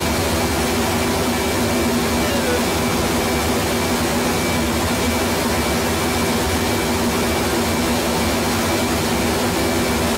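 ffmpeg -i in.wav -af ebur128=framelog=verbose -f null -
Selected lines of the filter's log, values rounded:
Integrated loudness:
  I:         -18.4 LUFS
  Threshold: -28.4 LUFS
Loudness range:
  LRA:         0.2 LU
  Threshold: -38.5 LUFS
  LRA low:   -18.5 LUFS
  LRA high:  -18.4 LUFS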